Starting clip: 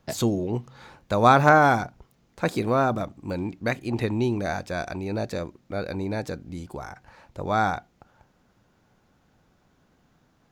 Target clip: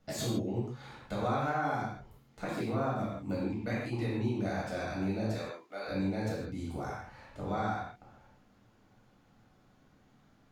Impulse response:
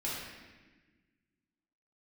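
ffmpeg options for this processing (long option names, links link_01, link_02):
-filter_complex "[0:a]asettb=1/sr,asplit=3[link_01][link_02][link_03];[link_01]atrim=end=5.344[link_04];[link_02]atrim=start=5.34:end=5.87,asetpts=PTS-STARTPTS,afade=type=in:duration=0.004:curve=qsin,afade=type=out:start_time=0.526:duration=0.004:curve=qsin,highpass=640[link_05];[link_03]atrim=start=5.866[link_06];[link_04][link_05]acrossfade=duration=0.004:curve1=hsin:curve2=qsin[link_07];[link_07][link_06]acrossfade=duration=0.004:curve1=qsin:curve2=hsin,acompressor=threshold=-30dB:ratio=4[link_08];[1:a]atrim=start_sample=2205,atrim=end_sample=6615,asetrate=37485,aresample=44100[link_09];[link_08][link_09]afir=irnorm=-1:irlink=0,volume=-6dB"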